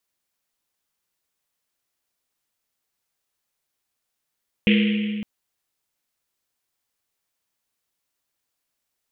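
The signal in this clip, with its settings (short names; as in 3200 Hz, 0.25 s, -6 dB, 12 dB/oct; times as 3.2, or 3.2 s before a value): Risset drum length 0.56 s, pitch 210 Hz, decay 2.84 s, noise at 2600 Hz, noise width 1200 Hz, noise 25%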